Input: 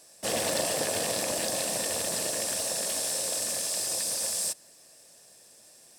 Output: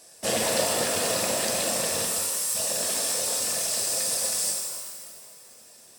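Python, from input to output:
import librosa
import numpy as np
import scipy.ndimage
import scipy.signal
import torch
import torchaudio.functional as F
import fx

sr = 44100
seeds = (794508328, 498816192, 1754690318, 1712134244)

y = fx.dereverb_blind(x, sr, rt60_s=1.0)
y = fx.differentiator(y, sr, at=(2.05, 2.55))
y = fx.rev_shimmer(y, sr, seeds[0], rt60_s=2.0, semitones=12, shimmer_db=-8, drr_db=-1.0)
y = y * librosa.db_to_amplitude(2.5)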